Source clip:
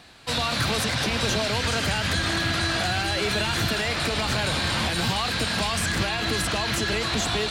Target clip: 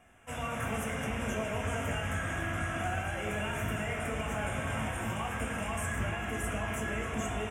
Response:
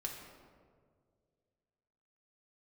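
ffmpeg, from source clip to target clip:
-filter_complex "[0:a]asuperstop=centerf=4300:order=4:qfactor=1,asplit=2[s0][s1];[s1]adelay=19,volume=0.299[s2];[s0][s2]amix=inputs=2:normalize=0[s3];[1:a]atrim=start_sample=2205,asetrate=79380,aresample=44100[s4];[s3][s4]afir=irnorm=-1:irlink=0,volume=0.668"

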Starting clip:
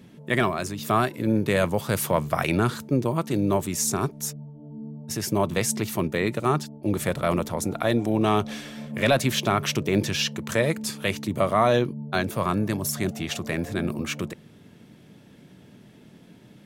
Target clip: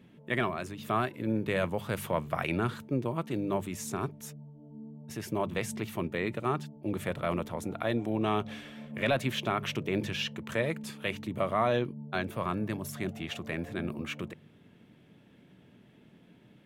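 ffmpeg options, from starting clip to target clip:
-af "highshelf=f=3900:t=q:w=1.5:g=-6.5,bandreject=f=50.4:t=h:w=4,bandreject=f=100.8:t=h:w=4,bandreject=f=151.2:t=h:w=4,bandreject=f=201.6:t=h:w=4,volume=0.422"

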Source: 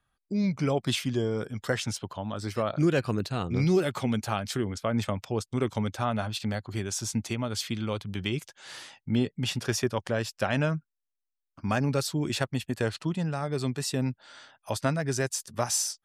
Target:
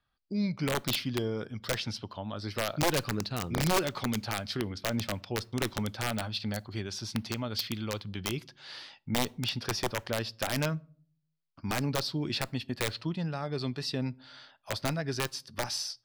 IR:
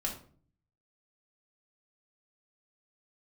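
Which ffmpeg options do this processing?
-filter_complex "[0:a]highshelf=f=5900:t=q:w=3:g=-8,aeval=exprs='(mod(7.08*val(0)+1,2)-1)/7.08':c=same,asplit=2[s0][s1];[1:a]atrim=start_sample=2205[s2];[s1][s2]afir=irnorm=-1:irlink=0,volume=0.0891[s3];[s0][s3]amix=inputs=2:normalize=0,volume=0.596"

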